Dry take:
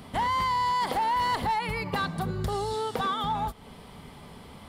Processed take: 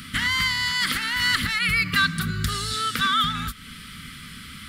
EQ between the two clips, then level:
drawn EQ curve 260 Hz 0 dB, 390 Hz −14 dB, 860 Hz −29 dB, 1,300 Hz +9 dB
+4.5 dB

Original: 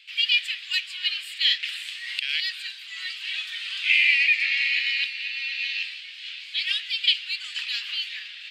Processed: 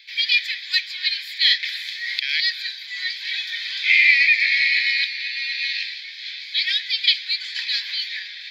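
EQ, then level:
tilt shelving filter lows −6.5 dB, about 1,100 Hz
high-shelf EQ 3,800 Hz −6 dB
phaser with its sweep stopped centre 1,900 Hz, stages 8
+6.5 dB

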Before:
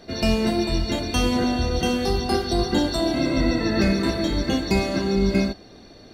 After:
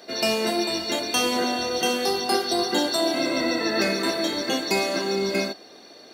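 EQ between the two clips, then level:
high-pass filter 390 Hz 12 dB per octave
high-shelf EQ 7,800 Hz +8 dB
+2.0 dB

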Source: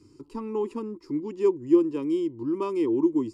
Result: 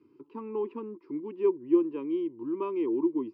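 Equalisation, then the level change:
loudspeaker in its box 290–2,500 Hz, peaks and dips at 300 Hz −3 dB, 520 Hz −5 dB, 730 Hz −10 dB, 1,300 Hz −5 dB, 1,900 Hz −8 dB
0.0 dB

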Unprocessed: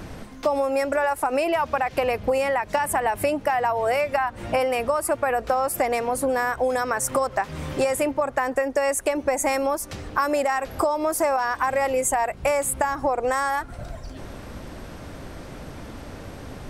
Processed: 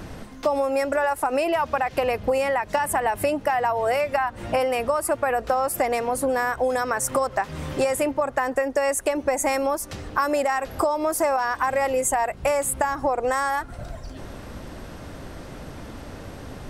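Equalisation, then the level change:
notch filter 2,300 Hz, Q 28
0.0 dB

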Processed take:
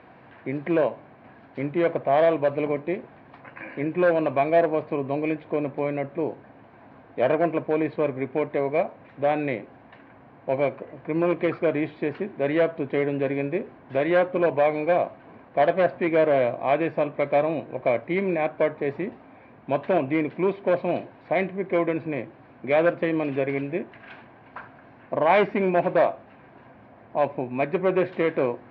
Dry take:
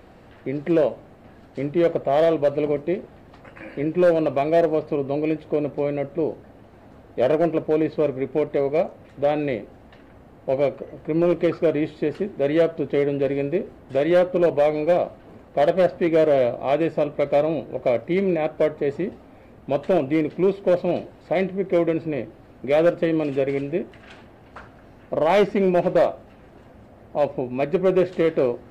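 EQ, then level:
loudspeaker in its box 110–4,100 Hz, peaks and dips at 130 Hz +6 dB, 270 Hz +4 dB, 710 Hz +5 dB, 1,000 Hz +10 dB, 1,600 Hz +8 dB, 2,300 Hz +8 dB
−5.0 dB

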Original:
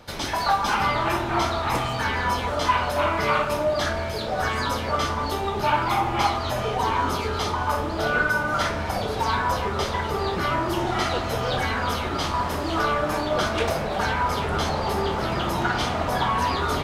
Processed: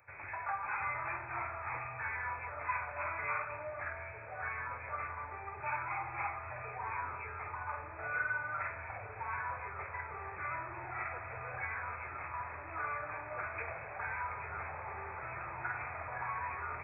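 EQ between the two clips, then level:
linear-phase brick-wall low-pass 2,600 Hz
first difference
low shelf with overshoot 150 Hz +12 dB, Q 3
+1.5 dB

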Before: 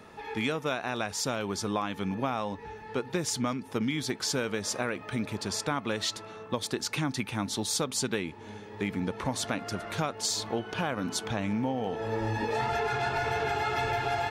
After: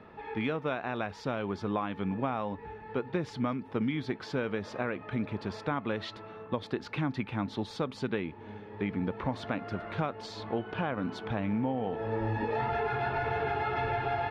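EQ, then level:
high-frequency loss of the air 370 metres
0.0 dB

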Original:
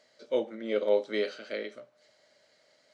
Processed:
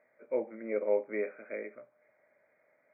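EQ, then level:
dynamic equaliser 1,400 Hz, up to −5 dB, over −50 dBFS, Q 2.4
linear-phase brick-wall low-pass 2,500 Hz
low-shelf EQ 220 Hz −4.5 dB
−2.5 dB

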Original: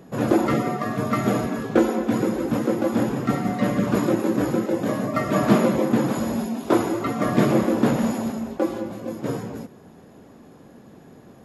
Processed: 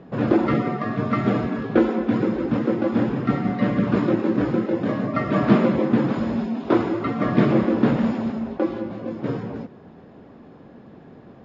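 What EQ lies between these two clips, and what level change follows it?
dynamic equaliser 710 Hz, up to −4 dB, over −34 dBFS, Q 0.98
Bessel low-pass filter 3,000 Hz, order 8
+2.0 dB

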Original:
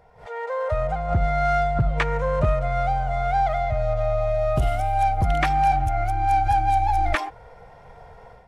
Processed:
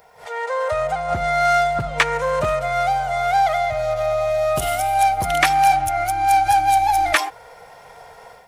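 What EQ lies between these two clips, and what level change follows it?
RIAA equalisation recording
+5.5 dB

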